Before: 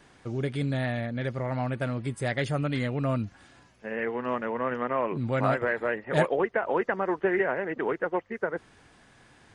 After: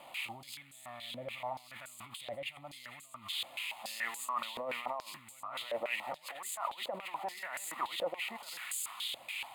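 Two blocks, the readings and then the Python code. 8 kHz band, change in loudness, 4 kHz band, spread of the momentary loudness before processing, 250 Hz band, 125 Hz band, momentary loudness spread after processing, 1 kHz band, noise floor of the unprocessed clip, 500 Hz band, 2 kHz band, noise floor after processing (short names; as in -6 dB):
n/a, -10.5 dB, +5.5 dB, 7 LU, -24.5 dB, -29.0 dB, 12 LU, -8.0 dB, -58 dBFS, -15.5 dB, -9.0 dB, -57 dBFS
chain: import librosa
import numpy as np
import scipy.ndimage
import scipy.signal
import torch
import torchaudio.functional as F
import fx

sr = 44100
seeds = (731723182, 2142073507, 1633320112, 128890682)

y = x + 0.5 * 10.0 ** (-25.5 / 20.0) * np.diff(np.sign(x), prepend=np.sign(x[:1]))
y = fx.fixed_phaser(y, sr, hz=1600.0, stages=6)
y = fx.echo_wet_highpass(y, sr, ms=189, feedback_pct=72, hz=3300.0, wet_db=-4)
y = fx.over_compress(y, sr, threshold_db=-37.0, ratio=-1.0)
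y = fx.filter_held_bandpass(y, sr, hz=7.0, low_hz=550.0, high_hz=7400.0)
y = y * 10.0 ** (10.0 / 20.0)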